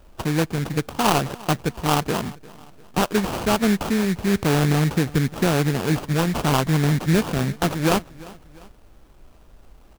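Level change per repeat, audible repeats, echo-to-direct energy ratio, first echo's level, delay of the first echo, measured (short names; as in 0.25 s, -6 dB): -6.5 dB, 2, -20.0 dB, -21.0 dB, 0.349 s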